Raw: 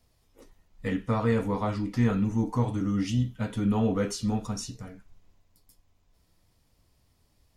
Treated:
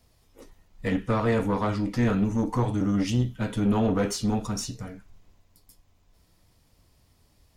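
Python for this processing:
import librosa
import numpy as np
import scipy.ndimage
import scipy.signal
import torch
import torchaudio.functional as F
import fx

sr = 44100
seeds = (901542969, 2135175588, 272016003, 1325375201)

y = fx.diode_clip(x, sr, knee_db=-28.0)
y = y * 10.0 ** (5.0 / 20.0)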